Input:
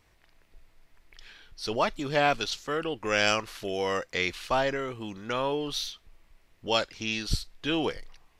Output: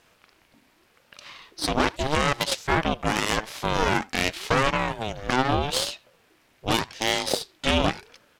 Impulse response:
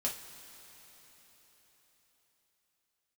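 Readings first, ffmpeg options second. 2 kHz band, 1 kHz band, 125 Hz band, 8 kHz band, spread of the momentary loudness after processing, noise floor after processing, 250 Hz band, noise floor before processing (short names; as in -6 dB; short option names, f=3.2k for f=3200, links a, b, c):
+4.0 dB, +5.5 dB, +8.5 dB, +7.5 dB, 8 LU, -63 dBFS, +5.5 dB, -64 dBFS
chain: -filter_complex "[0:a]highpass=f=190:p=1,asplit=2[a][b];[b]acompressor=threshold=-34dB:ratio=6,volume=0.5dB[c];[a][c]amix=inputs=2:normalize=0,alimiter=limit=-14dB:level=0:latency=1:release=98,aeval=exprs='0.2*(cos(1*acos(clip(val(0)/0.2,-1,1)))-cos(1*PI/2))+0.0708*(cos(4*acos(clip(val(0)/0.2,-1,1)))-cos(4*PI/2))':c=same,asplit=2[d][e];[e]adelay=80,highpass=300,lowpass=3.4k,asoftclip=type=hard:threshold=-19.5dB,volume=-22dB[f];[d][f]amix=inputs=2:normalize=0,aeval=exprs='val(0)*sin(2*PI*420*n/s+420*0.4/0.84*sin(2*PI*0.84*n/s))':c=same,volume=4dB"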